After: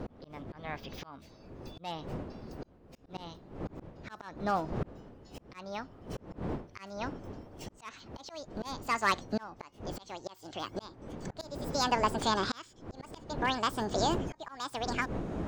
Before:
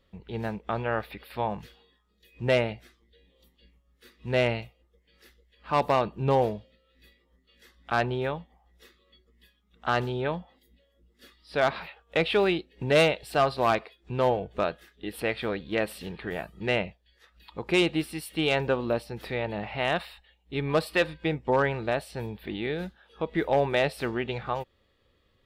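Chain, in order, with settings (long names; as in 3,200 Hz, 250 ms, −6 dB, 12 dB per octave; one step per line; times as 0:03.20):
gliding playback speed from 131% → 198%
wind on the microphone 380 Hz −35 dBFS
in parallel at −1 dB: downward compressor, threshold −37 dBFS, peak gain reduction 18.5 dB
on the sum: volume swells 774 ms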